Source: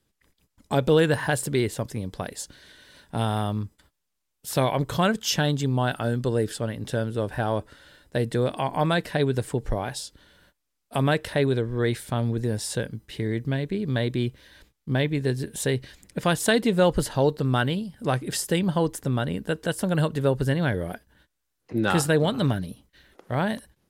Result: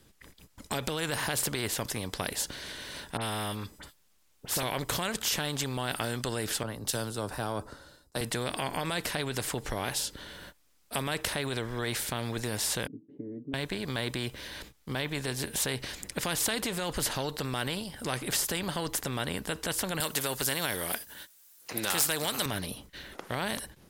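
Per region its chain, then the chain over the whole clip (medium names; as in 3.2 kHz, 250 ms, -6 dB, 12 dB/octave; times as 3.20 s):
3.17–4.63 s: phase dispersion highs, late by 46 ms, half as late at 2.5 kHz + compression 2.5:1, threshold -28 dBFS
6.63–8.21 s: high-order bell 2.4 kHz -10.5 dB 1.3 oct + three bands expanded up and down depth 100%
12.87–13.54 s: Butterworth band-pass 270 Hz, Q 2.5 + comb 7.1 ms, depth 72%
20.00–22.46 s: RIAA curve recording + hard clipper -12 dBFS
whole clip: peak limiter -17.5 dBFS; spectrum-flattening compressor 2:1; trim +7 dB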